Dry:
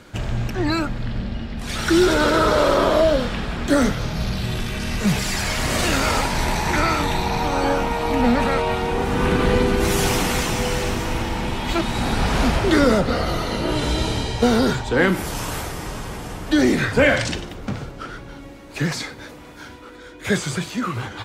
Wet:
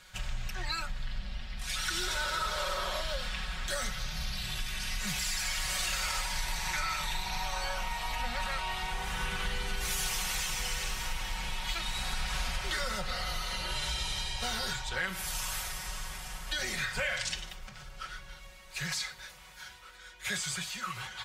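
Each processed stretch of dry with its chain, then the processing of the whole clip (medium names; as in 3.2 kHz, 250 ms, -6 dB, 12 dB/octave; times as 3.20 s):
17.53–17.94 s: compression 3:1, threshold -31 dBFS + band-stop 3.9 kHz, Q 25
whole clip: amplifier tone stack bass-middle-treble 10-0-10; comb 5.4 ms, depth 75%; compression 3:1, threshold -27 dBFS; trim -3.5 dB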